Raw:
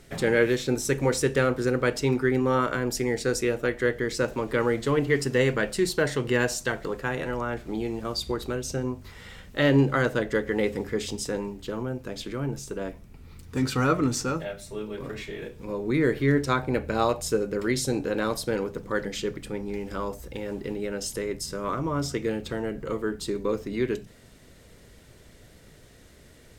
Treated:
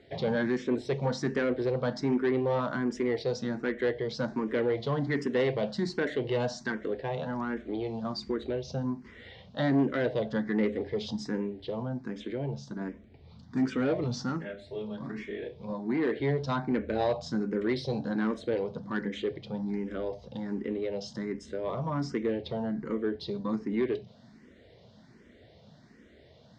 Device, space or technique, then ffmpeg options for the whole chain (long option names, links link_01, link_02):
barber-pole phaser into a guitar amplifier: -filter_complex "[0:a]asplit=2[link_01][link_02];[link_02]afreqshift=1.3[link_03];[link_01][link_03]amix=inputs=2:normalize=1,asoftclip=type=tanh:threshold=-21.5dB,highpass=96,equalizer=frequency=220:width_type=q:width=4:gain=7,equalizer=frequency=670:width_type=q:width=4:gain=4,equalizer=frequency=1300:width_type=q:width=4:gain=-6,equalizer=frequency=2600:width_type=q:width=4:gain=-7,lowpass=frequency=4600:width=0.5412,lowpass=frequency=4600:width=1.3066,asettb=1/sr,asplit=3[link_04][link_05][link_06];[link_04]atrim=end=15.734[link_07];[link_05]atrim=start=15.73:end=16.2,asetpts=PTS-STARTPTS,afade=type=in:duration=0.004:curve=qsin,afade=type=out:start_time=0.466:duration=0.004:curve=qsin,lowshelf=frequency=160:gain=-9.5[link_08];[link_06]atrim=start=16.196[link_09];[link_07][link_08]acrossfade=duration=0.004:curve1=hsin:curve2=qsin[link_10];[link_10][link_09]acrossfade=duration=0.004:curve1=qsin:curve2=hsin"